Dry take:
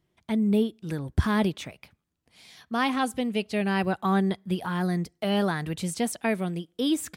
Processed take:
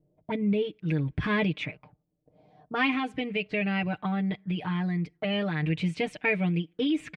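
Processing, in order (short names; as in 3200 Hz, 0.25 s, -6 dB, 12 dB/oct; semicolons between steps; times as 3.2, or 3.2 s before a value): bell 1200 Hz -9 dB 2.3 oct; comb 6.6 ms, depth 86%; limiter -21 dBFS, peak gain reduction 9 dB; 2.93–5.63 compressor 2:1, threshold -30 dBFS, peak gain reduction 4 dB; envelope low-pass 560–2400 Hz up, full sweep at -31 dBFS; gain +1.5 dB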